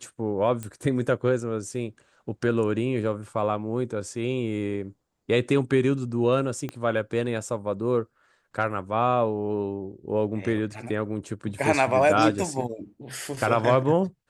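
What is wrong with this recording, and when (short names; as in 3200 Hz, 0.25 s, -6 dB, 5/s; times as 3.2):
0.63 pop -20 dBFS
6.69 pop -19 dBFS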